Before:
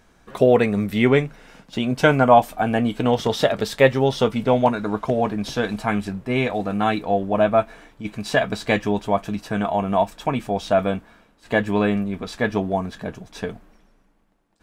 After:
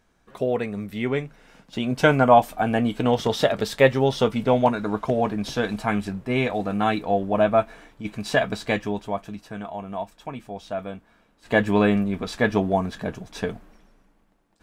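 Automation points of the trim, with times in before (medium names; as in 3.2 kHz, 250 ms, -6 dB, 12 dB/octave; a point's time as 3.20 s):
1.05 s -9 dB
2.02 s -1.5 dB
8.43 s -1.5 dB
9.66 s -11.5 dB
10.96 s -11.5 dB
11.60 s +1 dB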